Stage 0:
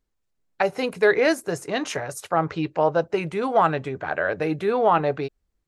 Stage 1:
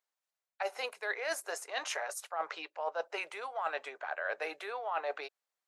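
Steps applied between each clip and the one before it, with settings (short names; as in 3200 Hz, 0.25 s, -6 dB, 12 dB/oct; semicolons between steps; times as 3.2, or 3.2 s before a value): HPF 620 Hz 24 dB/oct; reverse; compressor 16:1, threshold -28 dBFS, peak gain reduction 14.5 dB; reverse; gain -3.5 dB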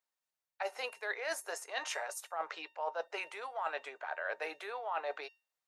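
resonator 910 Hz, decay 0.31 s, mix 70%; gain +8 dB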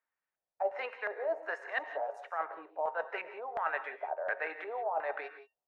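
LFO low-pass square 1.4 Hz 690–1800 Hz; non-linear reverb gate 0.2 s rising, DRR 10.5 dB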